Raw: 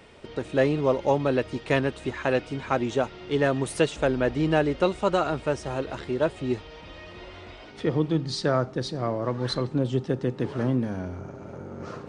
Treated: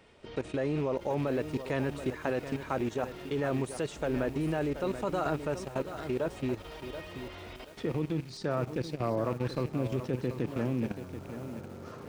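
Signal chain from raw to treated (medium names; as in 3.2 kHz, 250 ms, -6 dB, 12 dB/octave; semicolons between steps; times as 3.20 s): rattle on loud lows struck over -32 dBFS, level -32 dBFS; dynamic bell 3.1 kHz, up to -5 dB, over -44 dBFS, Q 1.1; level held to a coarse grid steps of 15 dB; bit-crushed delay 731 ms, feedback 35%, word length 8-bit, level -10 dB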